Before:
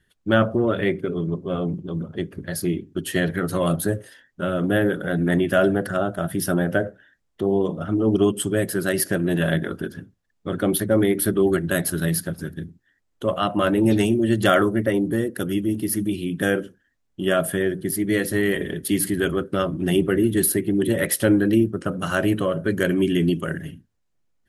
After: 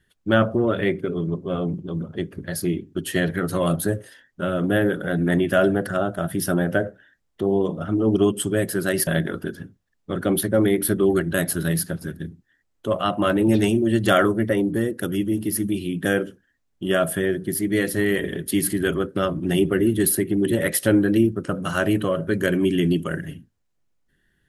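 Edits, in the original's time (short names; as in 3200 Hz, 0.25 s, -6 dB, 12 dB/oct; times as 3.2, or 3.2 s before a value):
9.07–9.44 cut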